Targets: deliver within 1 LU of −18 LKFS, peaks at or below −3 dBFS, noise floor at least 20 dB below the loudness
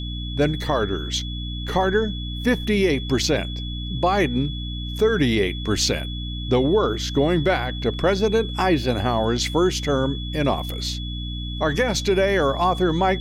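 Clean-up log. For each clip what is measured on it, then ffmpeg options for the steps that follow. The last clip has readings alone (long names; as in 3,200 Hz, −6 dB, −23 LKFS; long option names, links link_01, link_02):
mains hum 60 Hz; hum harmonics up to 300 Hz; level of the hum −27 dBFS; interfering tone 3,400 Hz; level of the tone −34 dBFS; integrated loudness −22.0 LKFS; sample peak −8.5 dBFS; target loudness −18.0 LKFS
→ -af "bandreject=frequency=60:width_type=h:width=4,bandreject=frequency=120:width_type=h:width=4,bandreject=frequency=180:width_type=h:width=4,bandreject=frequency=240:width_type=h:width=4,bandreject=frequency=300:width_type=h:width=4"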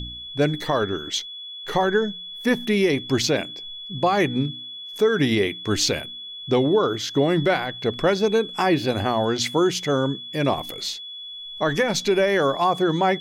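mains hum none found; interfering tone 3,400 Hz; level of the tone −34 dBFS
→ -af "bandreject=frequency=3400:width=30"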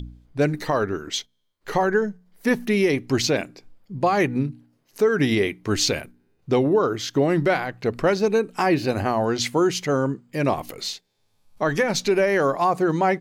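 interfering tone none found; integrated loudness −22.5 LKFS; sample peak −9.0 dBFS; target loudness −18.0 LKFS
→ -af "volume=4.5dB"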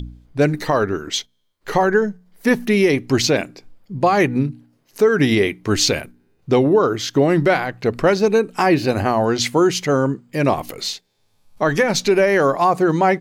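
integrated loudness −18.0 LKFS; sample peak −4.5 dBFS; background noise floor −63 dBFS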